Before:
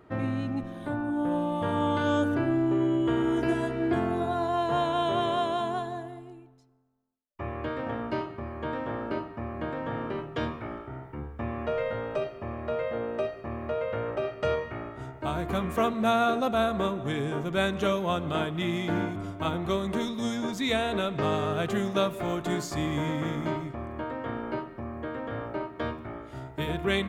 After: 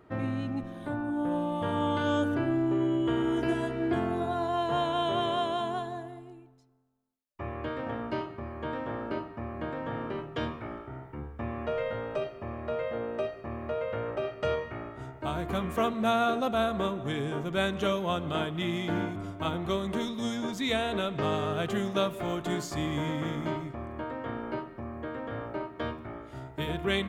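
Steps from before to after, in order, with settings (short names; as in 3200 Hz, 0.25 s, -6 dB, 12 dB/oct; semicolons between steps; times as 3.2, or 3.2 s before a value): dynamic EQ 3100 Hz, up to +4 dB, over -55 dBFS, Q 7.2; gain -2 dB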